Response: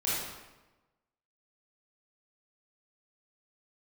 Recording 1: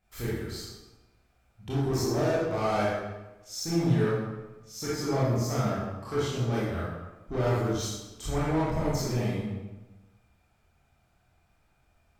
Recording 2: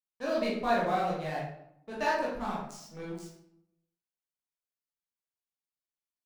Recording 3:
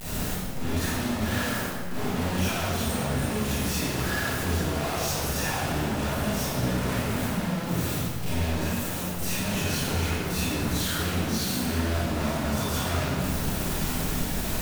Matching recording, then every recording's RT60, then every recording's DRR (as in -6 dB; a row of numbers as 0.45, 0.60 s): 1; 1.1, 0.75, 1.8 s; -9.0, -6.5, -11.5 dB